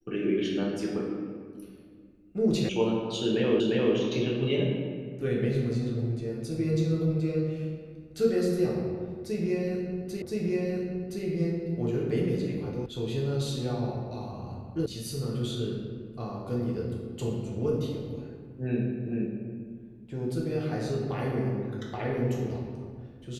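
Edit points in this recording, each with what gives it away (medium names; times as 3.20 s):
2.69 s: sound stops dead
3.60 s: repeat of the last 0.35 s
10.22 s: repeat of the last 1.02 s
12.86 s: sound stops dead
14.86 s: sound stops dead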